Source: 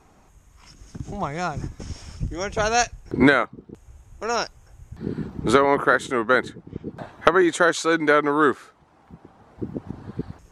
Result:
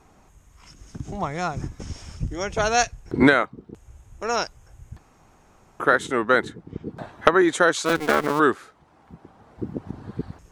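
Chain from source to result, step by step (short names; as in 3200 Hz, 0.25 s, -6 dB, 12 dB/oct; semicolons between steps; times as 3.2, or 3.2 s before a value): 4.98–5.8 room tone; 7.85–8.4 cycle switcher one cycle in 2, muted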